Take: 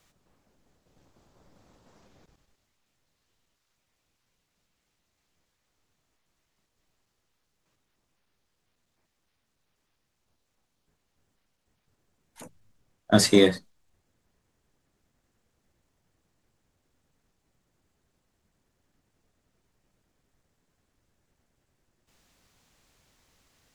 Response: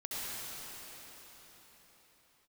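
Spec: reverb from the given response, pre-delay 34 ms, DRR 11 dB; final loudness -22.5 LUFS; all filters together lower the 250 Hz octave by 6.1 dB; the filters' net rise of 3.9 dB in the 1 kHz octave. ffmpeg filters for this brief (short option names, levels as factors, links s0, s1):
-filter_complex "[0:a]equalizer=f=250:t=o:g=-8.5,equalizer=f=1000:t=o:g=7,asplit=2[s0][s1];[1:a]atrim=start_sample=2205,adelay=34[s2];[s1][s2]afir=irnorm=-1:irlink=0,volume=0.178[s3];[s0][s3]amix=inputs=2:normalize=0,volume=1.26"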